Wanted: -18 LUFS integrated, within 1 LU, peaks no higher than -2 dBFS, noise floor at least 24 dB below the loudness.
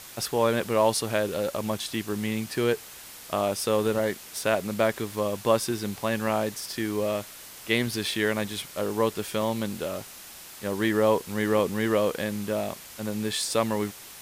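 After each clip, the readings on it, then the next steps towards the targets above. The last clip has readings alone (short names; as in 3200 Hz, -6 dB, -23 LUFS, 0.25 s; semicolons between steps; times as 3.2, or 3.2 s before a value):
noise floor -45 dBFS; noise floor target -52 dBFS; loudness -27.5 LUFS; peak -8.0 dBFS; loudness target -18.0 LUFS
-> noise print and reduce 7 dB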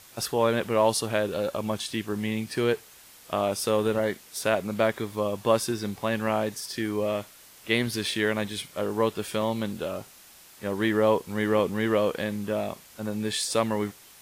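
noise floor -52 dBFS; loudness -27.5 LUFS; peak -8.0 dBFS; loudness target -18.0 LUFS
-> gain +9.5 dB; limiter -2 dBFS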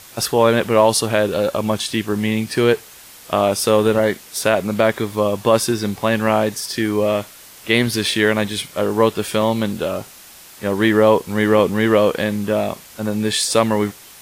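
loudness -18.0 LUFS; peak -2.0 dBFS; noise floor -42 dBFS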